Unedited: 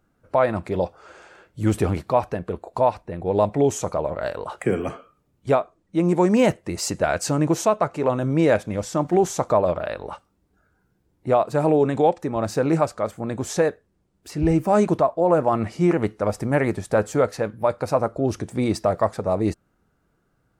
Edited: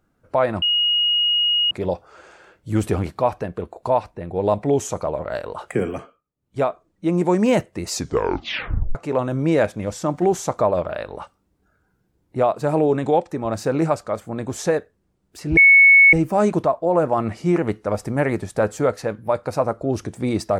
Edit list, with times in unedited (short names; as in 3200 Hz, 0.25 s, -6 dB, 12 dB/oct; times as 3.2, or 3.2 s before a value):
0.62 add tone 2880 Hz -15.5 dBFS 1.09 s
4.79–5.61 dip -19 dB, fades 0.34 s
6.79 tape stop 1.07 s
14.48 add tone 2210 Hz -7 dBFS 0.56 s